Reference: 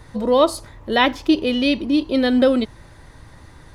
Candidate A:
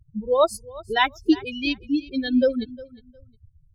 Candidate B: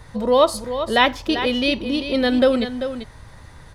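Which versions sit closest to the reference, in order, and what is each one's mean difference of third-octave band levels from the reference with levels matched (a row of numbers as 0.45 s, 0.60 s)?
B, A; 4.0 dB, 10.0 dB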